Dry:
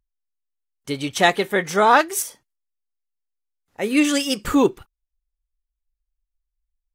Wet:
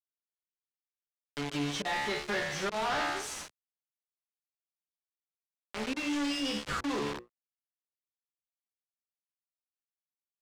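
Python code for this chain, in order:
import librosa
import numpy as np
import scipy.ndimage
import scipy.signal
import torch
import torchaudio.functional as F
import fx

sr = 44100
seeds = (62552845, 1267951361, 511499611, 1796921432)

y = fx.dynamic_eq(x, sr, hz=460.0, q=6.1, threshold_db=-36.0, ratio=4.0, max_db=-4)
y = fx.comb_fb(y, sr, f0_hz=72.0, decay_s=0.39, harmonics='all', damping=0.0, mix_pct=90)
y = fx.auto_swell(y, sr, attack_ms=202.0)
y = fx.stretch_vocoder(y, sr, factor=1.5)
y = fx.low_shelf(y, sr, hz=270.0, db=-2.5)
y = fx.quant_companded(y, sr, bits=2)
y = scipy.signal.sosfilt(scipy.signal.butter(2, 5200.0, 'lowpass', fs=sr, output='sos'), y)
y = fx.hum_notches(y, sr, base_hz=60, count=9)
y = np.sign(y) * np.maximum(np.abs(y) - 10.0 ** (-53.5 / 20.0), 0.0)
y = fx.band_squash(y, sr, depth_pct=40)
y = y * 10.0 ** (-4.0 / 20.0)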